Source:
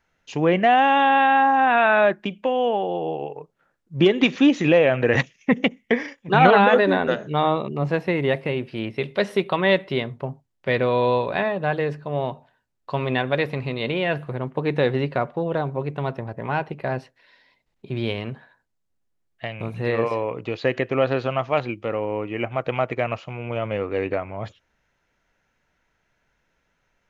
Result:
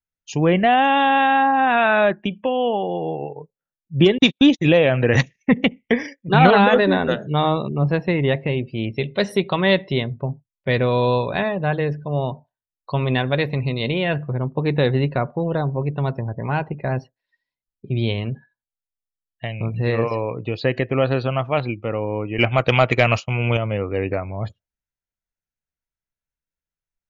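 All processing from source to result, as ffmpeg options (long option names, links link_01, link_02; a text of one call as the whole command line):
ffmpeg -i in.wav -filter_complex "[0:a]asettb=1/sr,asplit=3[link_01][link_02][link_03];[link_01]atrim=end=4.184[link_04];[link_02]atrim=start=4.18:end=4.9,asetpts=PTS-STARTPTS,afade=type=in:duration=0.004:curve=qsin,afade=type=out:start_time=0.716:duration=0.004:curve=qsin,agate=range=-54dB:threshold=-24dB:ratio=16:release=100:detection=peak,equalizer=frequency=3600:width=5.1:gain=7[link_05];[link_03]atrim=start=4.896[link_06];[link_04][link_05]acrossfade=duration=0.004:curve1=hsin:curve2=qsin[link_07];[link_07][link_06]acrossfade=duration=0.004:curve1=qsin:curve2=hsin,asettb=1/sr,asplit=3[link_08][link_09][link_10];[link_08]atrim=end=22.384[link_11];[link_09]atrim=start=22.38:end=23.57,asetpts=PTS-STARTPTS,afade=type=in:duration=0.004:curve=qsin,afade=type=out:start_time=1.186:duration=0.004:curve=qsin,agate=range=-33dB:threshold=-34dB:ratio=3:release=100:detection=peak,highshelf=frequency=2100:gain=11.5,acontrast=27[link_12];[link_10]atrim=start=23.566[link_13];[link_11][link_12]acrossfade=duration=0.004:curve1=hsin:curve2=qsin[link_14];[link_14][link_13]acrossfade=duration=0.004:curve1=qsin:curve2=hsin,bass=frequency=250:gain=3,treble=frequency=4000:gain=11,afftdn=noise_reduction=30:noise_floor=-40,lowshelf=frequency=110:gain=10" out.wav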